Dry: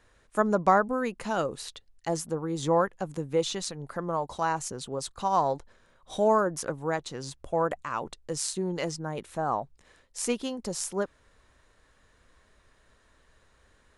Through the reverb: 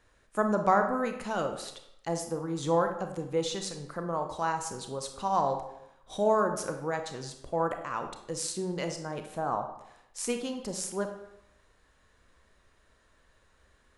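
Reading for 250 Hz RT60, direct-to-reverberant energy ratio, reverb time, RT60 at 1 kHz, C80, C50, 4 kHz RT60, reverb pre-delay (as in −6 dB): 0.75 s, 5.5 dB, 0.80 s, 0.85 s, 10.5 dB, 7.5 dB, 0.60 s, 27 ms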